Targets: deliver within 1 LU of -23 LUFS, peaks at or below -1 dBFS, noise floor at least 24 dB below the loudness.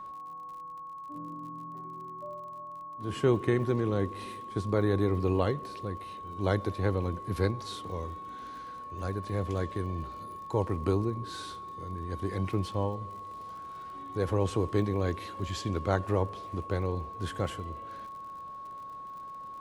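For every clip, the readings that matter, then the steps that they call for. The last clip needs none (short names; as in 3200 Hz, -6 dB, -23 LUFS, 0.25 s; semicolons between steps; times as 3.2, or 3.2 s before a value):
ticks 46/s; steady tone 1100 Hz; tone level -40 dBFS; loudness -33.5 LUFS; peak -12.0 dBFS; loudness target -23.0 LUFS
-> de-click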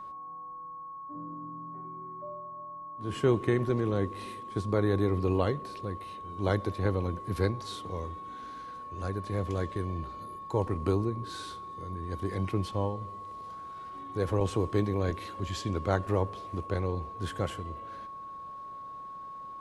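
ticks 0/s; steady tone 1100 Hz; tone level -40 dBFS
-> notch 1100 Hz, Q 30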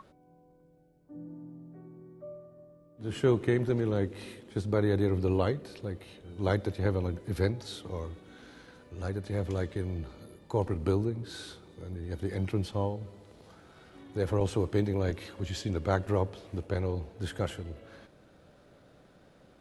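steady tone none; loudness -32.0 LUFS; peak -12.5 dBFS; loudness target -23.0 LUFS
-> gain +9 dB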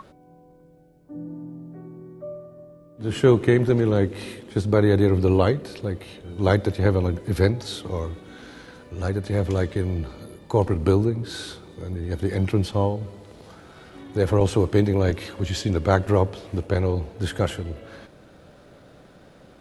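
loudness -23.0 LUFS; peak -3.5 dBFS; noise floor -51 dBFS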